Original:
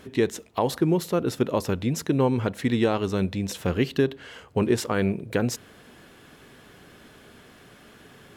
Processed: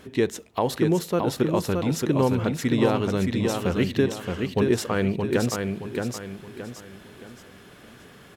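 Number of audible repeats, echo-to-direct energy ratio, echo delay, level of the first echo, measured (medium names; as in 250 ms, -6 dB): 4, -4.0 dB, 622 ms, -4.5 dB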